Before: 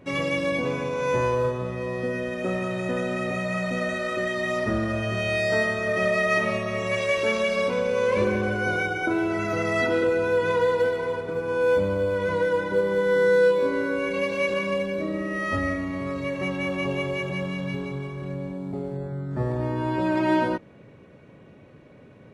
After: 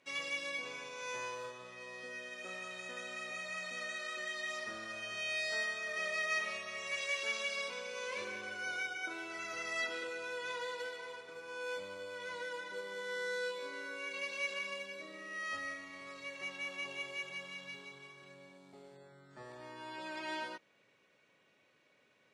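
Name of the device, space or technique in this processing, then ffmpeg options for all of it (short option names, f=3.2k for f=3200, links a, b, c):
piezo pickup straight into a mixer: -af "lowpass=6k,aderivative,volume=1dB"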